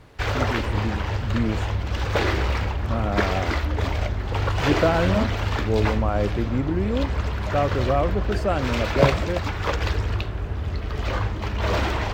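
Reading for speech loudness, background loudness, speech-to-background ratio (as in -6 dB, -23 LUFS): -27.0 LUFS, -25.5 LUFS, -1.5 dB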